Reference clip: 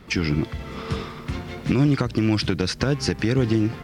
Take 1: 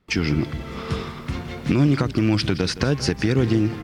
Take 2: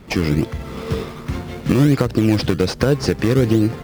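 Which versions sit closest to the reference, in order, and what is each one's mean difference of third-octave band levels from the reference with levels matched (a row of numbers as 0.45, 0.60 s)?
1, 2; 1.0, 3.0 dB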